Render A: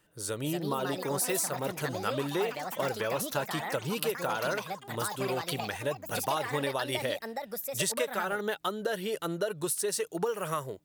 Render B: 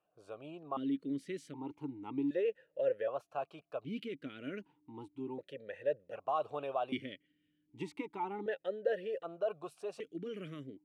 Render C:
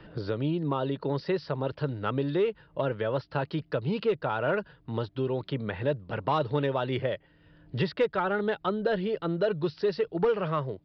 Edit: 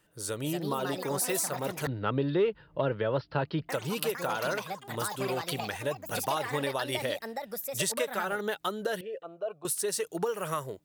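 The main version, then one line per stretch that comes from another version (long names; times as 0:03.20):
A
0:01.87–0:03.69: punch in from C
0:09.01–0:09.65: punch in from B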